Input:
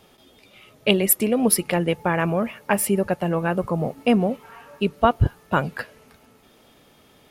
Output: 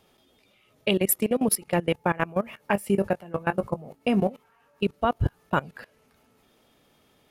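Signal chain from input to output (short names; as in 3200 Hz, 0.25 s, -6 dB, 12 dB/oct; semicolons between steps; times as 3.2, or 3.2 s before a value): level quantiser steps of 21 dB; 2.6–4.32 doubler 20 ms -12.5 dB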